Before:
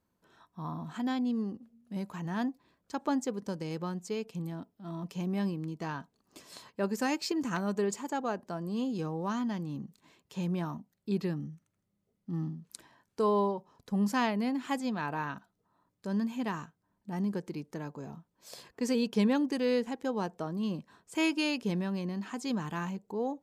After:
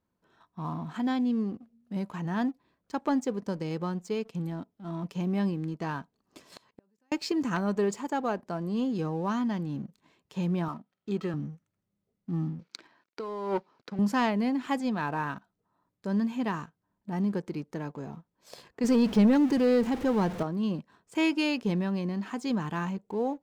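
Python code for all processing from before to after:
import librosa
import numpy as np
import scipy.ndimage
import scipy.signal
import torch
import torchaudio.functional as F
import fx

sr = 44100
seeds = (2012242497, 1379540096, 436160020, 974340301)

y = fx.chain(x, sr, fx.level_steps(step_db=21),
    fx.gate_flip(shuts_db=-39.0, range_db=-27), at=(6.57, 7.12))
y = fx.chain(y, sr, fx.highpass(hz=270.0, slope=6),
    fx.small_body(hz=(1300.0, 3200.0), ring_ms=45, db=15),
    fx.resample_linear(factor=4), at=(10.68, 11.34))
y = fx.chain(y, sr, fx.law_mismatch(coded='A'),
    fx.over_compress(threshold_db=-37.0, ratio=-1.0),
    fx.cabinet(low_hz=190.0, low_slope=12, high_hz=6000.0, hz=(340.0, 1400.0, 2300.0, 4400.0), db=(5, 7, 7, 6)), at=(12.59, 13.99))
y = fx.chain(y, sr, fx.zero_step(step_db=-38.5),
    fx.low_shelf(hz=220.0, db=7.5), at=(18.84, 20.43))
y = fx.high_shelf(y, sr, hz=5700.0, db=-9.5)
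y = fx.leveller(y, sr, passes=1)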